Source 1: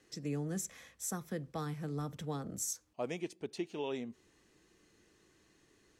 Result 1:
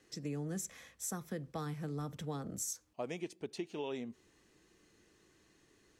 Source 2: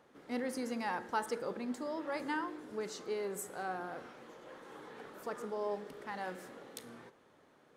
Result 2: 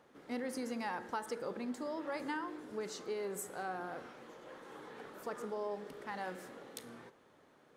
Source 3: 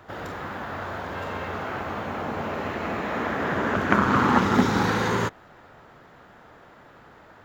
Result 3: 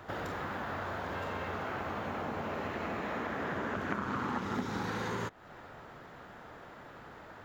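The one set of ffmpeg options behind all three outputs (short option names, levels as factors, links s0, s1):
-af "acompressor=threshold=0.0178:ratio=4"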